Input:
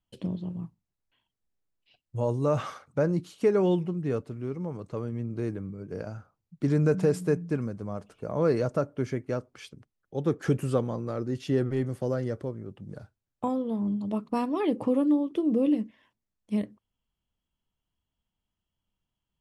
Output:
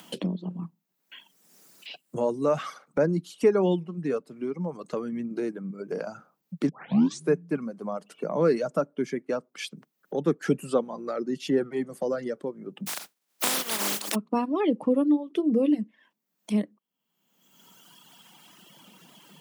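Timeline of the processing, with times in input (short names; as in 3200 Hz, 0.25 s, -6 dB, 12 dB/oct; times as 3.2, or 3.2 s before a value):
6.69 tape start 0.61 s
12.86–14.14 spectral contrast lowered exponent 0.16
whole clip: reverb removal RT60 1.8 s; steep high-pass 160 Hz 48 dB/oct; upward compressor, threshold -28 dBFS; gain +3 dB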